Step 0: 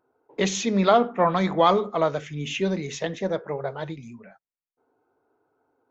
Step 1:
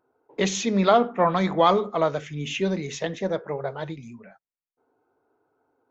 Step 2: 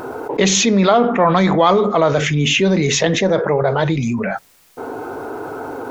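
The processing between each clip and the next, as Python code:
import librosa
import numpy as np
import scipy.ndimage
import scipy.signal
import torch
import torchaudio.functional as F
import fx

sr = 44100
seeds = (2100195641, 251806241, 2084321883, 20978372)

y1 = x
y2 = fx.env_flatten(y1, sr, amount_pct=70)
y2 = y2 * 10.0 ** (3.5 / 20.0)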